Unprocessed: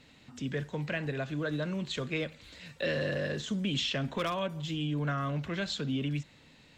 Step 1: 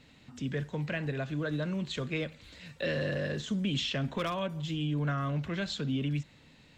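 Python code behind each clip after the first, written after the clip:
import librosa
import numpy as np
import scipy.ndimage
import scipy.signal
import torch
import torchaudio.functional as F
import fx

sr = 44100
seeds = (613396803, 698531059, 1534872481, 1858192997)

y = fx.bass_treble(x, sr, bass_db=3, treble_db=-1)
y = F.gain(torch.from_numpy(y), -1.0).numpy()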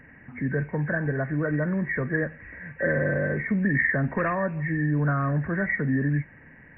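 y = fx.freq_compress(x, sr, knee_hz=1500.0, ratio=4.0)
y = F.gain(torch.from_numpy(y), 7.0).numpy()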